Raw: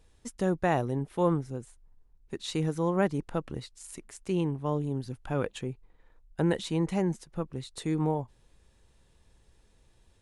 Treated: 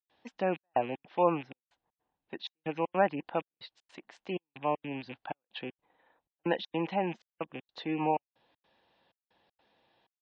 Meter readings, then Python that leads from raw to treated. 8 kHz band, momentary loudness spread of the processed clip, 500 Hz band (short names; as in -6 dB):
under -25 dB, 19 LU, -1.5 dB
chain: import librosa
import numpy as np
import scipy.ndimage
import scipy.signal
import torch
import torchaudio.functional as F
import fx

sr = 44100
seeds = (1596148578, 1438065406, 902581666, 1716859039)

y = fx.rattle_buzz(x, sr, strikes_db=-39.0, level_db=-34.0)
y = fx.step_gate(y, sr, bpm=158, pattern='.xxxxx..xx', floor_db=-60.0, edge_ms=4.5)
y = fx.cabinet(y, sr, low_hz=360.0, low_slope=12, high_hz=3800.0, hz=(410.0, 770.0, 1300.0, 2200.0), db=(-9, 5, -5, -4))
y = fx.spec_gate(y, sr, threshold_db=-30, keep='strong')
y = F.gain(torch.from_numpy(y), 3.5).numpy()